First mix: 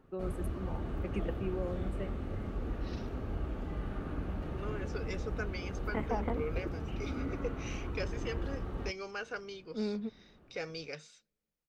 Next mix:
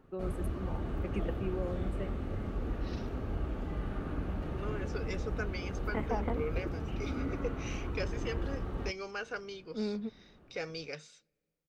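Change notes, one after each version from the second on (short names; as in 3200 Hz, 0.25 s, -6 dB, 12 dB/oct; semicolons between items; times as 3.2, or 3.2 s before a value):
second voice: send +9.0 dB; background: send +8.0 dB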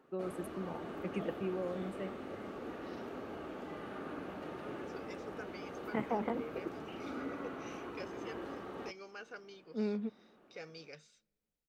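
second voice -9.5 dB; background: add HPF 310 Hz 12 dB/oct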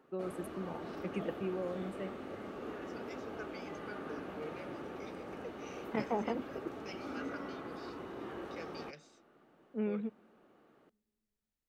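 second voice: entry -2.00 s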